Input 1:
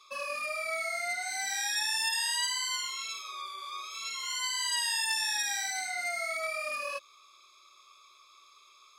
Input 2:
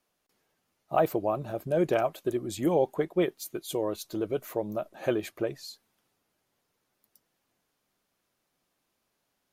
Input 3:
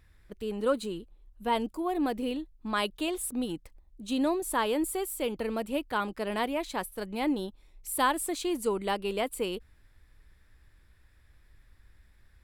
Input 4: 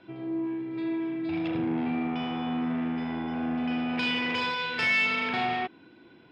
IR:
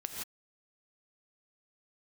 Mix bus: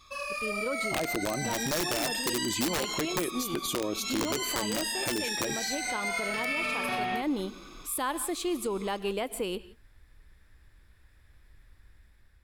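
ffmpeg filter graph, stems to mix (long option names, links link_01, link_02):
-filter_complex "[0:a]volume=-2.5dB,asplit=2[link_01][link_02];[link_02]volume=-6.5dB[link_03];[1:a]equalizer=frequency=250:width_type=o:width=0.67:gain=11,equalizer=frequency=2500:width_type=o:width=0.67:gain=6,equalizer=frequency=6300:width_type=o:width=0.67:gain=4,acompressor=threshold=-24dB:ratio=16,adynamicequalizer=threshold=0.00794:dfrequency=1500:dqfactor=0.7:tfrequency=1500:tqfactor=0.7:attack=5:release=100:ratio=0.375:range=1.5:mode=boostabove:tftype=highshelf,volume=2.5dB,asplit=3[link_04][link_05][link_06];[link_05]volume=-18.5dB[link_07];[2:a]volume=-5dB,asplit=2[link_08][link_09];[link_09]volume=-14.5dB[link_10];[3:a]adelay=1550,volume=-2.5dB[link_11];[link_06]apad=whole_len=346827[link_12];[link_11][link_12]sidechaincompress=threshold=-45dB:ratio=8:attack=16:release=790[link_13];[4:a]atrim=start_sample=2205[link_14];[link_03][link_07][link_10]amix=inputs=3:normalize=0[link_15];[link_15][link_14]afir=irnorm=-1:irlink=0[link_16];[link_01][link_04][link_08][link_13][link_16]amix=inputs=5:normalize=0,dynaudnorm=framelen=310:gausssize=5:maxgain=5.5dB,aeval=exprs='(mod(3.55*val(0)+1,2)-1)/3.55':channel_layout=same,alimiter=limit=-22dB:level=0:latency=1:release=127"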